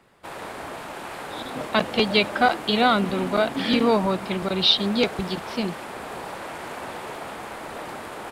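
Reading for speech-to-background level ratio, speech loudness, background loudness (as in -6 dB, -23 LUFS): 13.0 dB, -22.0 LUFS, -35.0 LUFS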